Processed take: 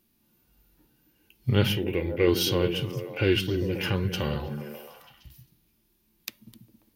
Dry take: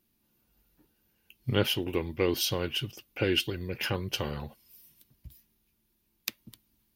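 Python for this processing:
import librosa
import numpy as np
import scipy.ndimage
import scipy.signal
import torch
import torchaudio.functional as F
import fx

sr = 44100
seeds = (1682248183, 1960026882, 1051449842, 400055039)

y = fx.echo_stepped(x, sr, ms=134, hz=150.0, octaves=0.7, feedback_pct=70, wet_db=-3.0)
y = fx.hpss(y, sr, part='percussive', gain_db=-11)
y = fx.graphic_eq_10(y, sr, hz=(125, 250, 500, 1000, 2000, 4000, 8000), db=(-3, -5, 4, -8, 8, -4, -6), at=(1.72, 2.27))
y = F.gain(torch.from_numpy(y), 8.0).numpy()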